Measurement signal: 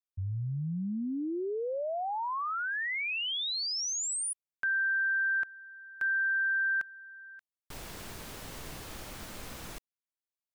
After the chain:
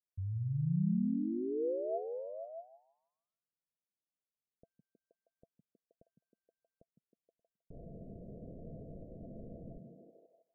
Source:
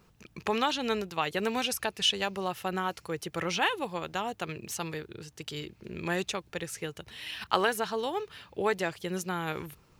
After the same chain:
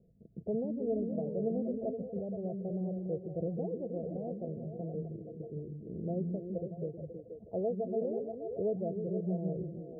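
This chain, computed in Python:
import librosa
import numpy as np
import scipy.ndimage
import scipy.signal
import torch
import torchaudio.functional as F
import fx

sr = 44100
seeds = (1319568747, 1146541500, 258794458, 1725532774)

y = scipy.signal.sosfilt(scipy.signal.cheby1(6, 6, 690.0, 'lowpass', fs=sr, output='sos'), x)
y = fx.echo_stepped(y, sr, ms=158, hz=180.0, octaves=0.7, feedback_pct=70, wet_db=0.0)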